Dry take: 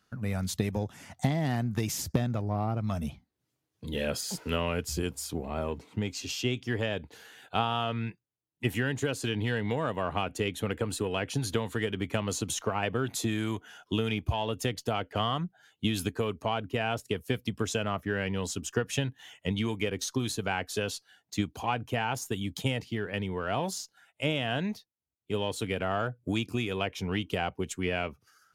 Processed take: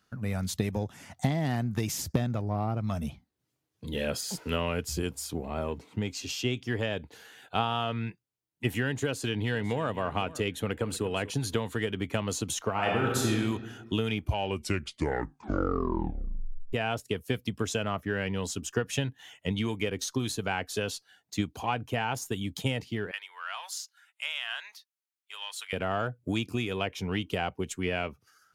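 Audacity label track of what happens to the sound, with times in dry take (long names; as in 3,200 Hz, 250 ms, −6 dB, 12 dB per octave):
9.040000	9.940000	delay throw 500 ms, feedback 15%, level −17.5 dB
10.610000	11.060000	delay throw 240 ms, feedback 15%, level −16.5 dB
12.720000	13.300000	thrown reverb, RT60 1.4 s, DRR −2 dB
14.180000	14.180000	tape stop 2.55 s
23.110000	25.730000	high-pass filter 1,100 Hz 24 dB per octave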